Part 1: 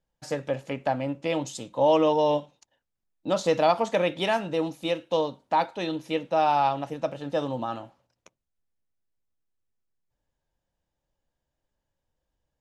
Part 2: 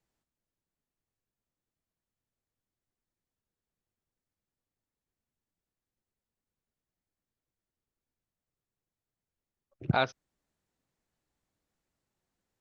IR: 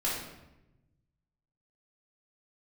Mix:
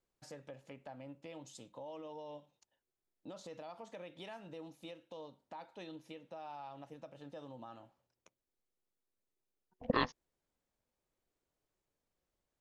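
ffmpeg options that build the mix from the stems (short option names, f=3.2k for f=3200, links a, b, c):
-filter_complex "[0:a]alimiter=limit=-21.5dB:level=0:latency=1:release=142,acompressor=threshold=-45dB:ratio=1.5,volume=-11.5dB[a];[1:a]aeval=exprs='val(0)*sin(2*PI*370*n/s)':c=same,volume=-2.5dB[b];[a][b]amix=inputs=2:normalize=0"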